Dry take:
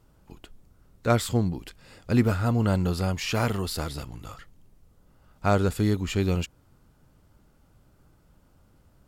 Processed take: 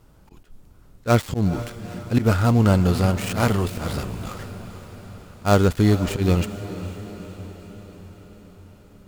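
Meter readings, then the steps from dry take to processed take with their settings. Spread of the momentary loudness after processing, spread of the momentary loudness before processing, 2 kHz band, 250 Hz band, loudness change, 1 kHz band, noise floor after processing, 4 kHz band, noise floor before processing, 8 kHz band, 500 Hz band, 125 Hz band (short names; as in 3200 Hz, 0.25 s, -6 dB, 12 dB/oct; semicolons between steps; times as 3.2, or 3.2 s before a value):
20 LU, 15 LU, +4.0 dB, +5.5 dB, +5.0 dB, +4.5 dB, -51 dBFS, +2.0 dB, -61 dBFS, +2.5 dB, +5.0 dB, +6.0 dB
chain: switching dead time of 0.11 ms; auto swell 0.101 s; diffused feedback echo 0.466 s, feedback 60%, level -13 dB; gain +6.5 dB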